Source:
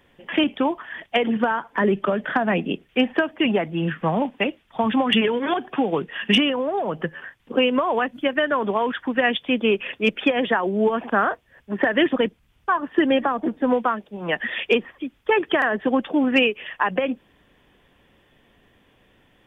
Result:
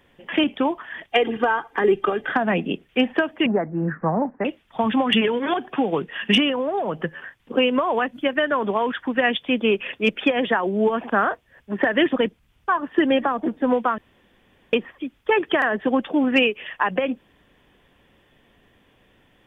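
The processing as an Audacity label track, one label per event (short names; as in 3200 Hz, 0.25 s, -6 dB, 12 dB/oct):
1.100000	2.320000	comb 2.5 ms
3.460000	4.450000	steep low-pass 1800 Hz 48 dB/oct
13.980000	14.730000	room tone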